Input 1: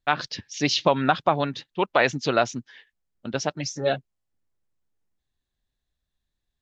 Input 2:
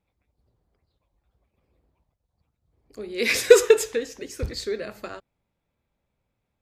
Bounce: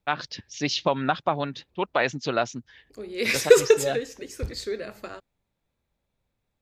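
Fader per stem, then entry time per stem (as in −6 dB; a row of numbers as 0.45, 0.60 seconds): −3.5, −2.0 decibels; 0.00, 0.00 seconds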